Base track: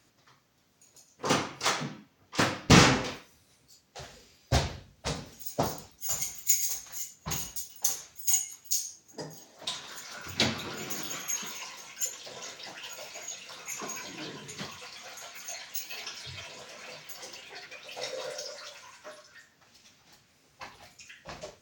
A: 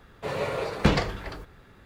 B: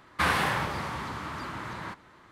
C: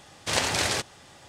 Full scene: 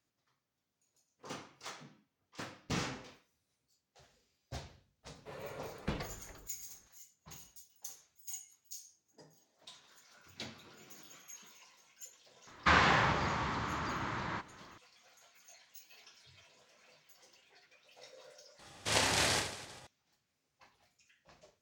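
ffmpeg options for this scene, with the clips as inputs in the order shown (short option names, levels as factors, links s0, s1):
-filter_complex "[0:a]volume=0.112[s0];[2:a]aresample=16000,aresample=44100[s1];[3:a]aecho=1:1:30|75|142.5|243.8|395.6:0.631|0.398|0.251|0.158|0.1[s2];[1:a]atrim=end=1.85,asetpts=PTS-STARTPTS,volume=0.141,afade=t=in:d=0.004:c=hsin,afade=t=out:st=1.846:d=0.004:c=hsin,adelay=5030[s3];[s1]atrim=end=2.31,asetpts=PTS-STARTPTS,volume=0.891,afade=t=in:d=0.004:c=hsin,afade=t=out:st=2.306:d=0.004:c=hsin,adelay=12470[s4];[s2]atrim=end=1.28,asetpts=PTS-STARTPTS,volume=0.447,afade=t=in:d=0.004:c=hsin,afade=t=out:st=1.276:d=0.004:c=hsin,adelay=18590[s5];[s0][s3][s4][s5]amix=inputs=4:normalize=0"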